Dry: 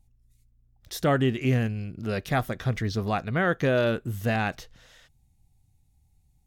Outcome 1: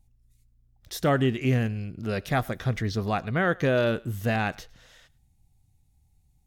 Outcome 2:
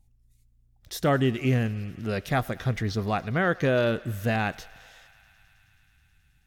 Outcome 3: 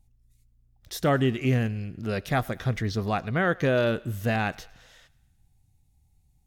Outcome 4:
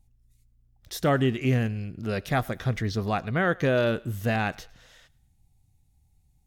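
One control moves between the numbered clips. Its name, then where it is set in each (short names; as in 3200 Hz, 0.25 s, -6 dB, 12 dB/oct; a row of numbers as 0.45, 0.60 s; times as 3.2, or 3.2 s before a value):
thinning echo, feedback: 16, 89, 58, 38%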